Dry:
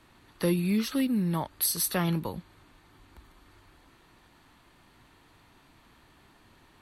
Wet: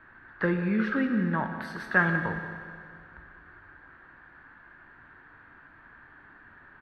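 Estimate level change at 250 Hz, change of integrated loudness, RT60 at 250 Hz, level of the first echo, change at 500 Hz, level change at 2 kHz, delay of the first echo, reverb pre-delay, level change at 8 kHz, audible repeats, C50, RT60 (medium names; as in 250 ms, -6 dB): 0.0 dB, 0.0 dB, 2.2 s, -14.5 dB, +0.5 dB, +14.0 dB, 182 ms, 14 ms, under -30 dB, 1, 6.5 dB, 2.2 s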